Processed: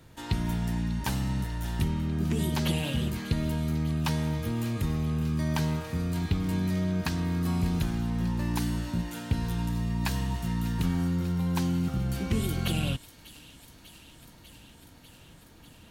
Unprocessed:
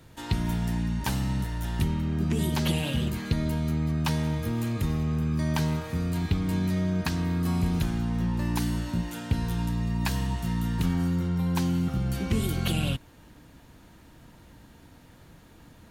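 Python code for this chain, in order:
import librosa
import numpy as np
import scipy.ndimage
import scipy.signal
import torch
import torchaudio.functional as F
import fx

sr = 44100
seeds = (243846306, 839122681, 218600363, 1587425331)

y = fx.echo_wet_highpass(x, sr, ms=595, feedback_pct=79, hz=3000.0, wet_db=-13.5)
y = y * librosa.db_to_amplitude(-1.5)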